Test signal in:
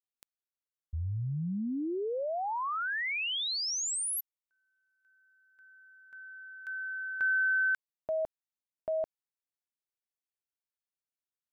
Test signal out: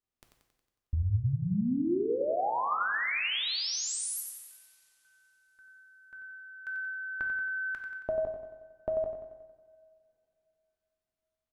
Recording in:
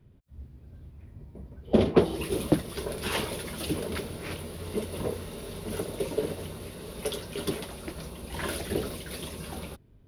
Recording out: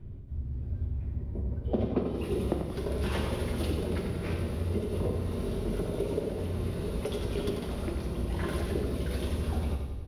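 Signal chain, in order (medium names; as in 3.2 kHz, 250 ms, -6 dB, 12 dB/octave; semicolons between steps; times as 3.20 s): tilt EQ -2.5 dB/octave; compression 4:1, threshold -35 dBFS; feedback delay 91 ms, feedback 56%, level -7 dB; two-slope reverb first 0.95 s, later 3.4 s, from -22 dB, DRR 4.5 dB; trim +4 dB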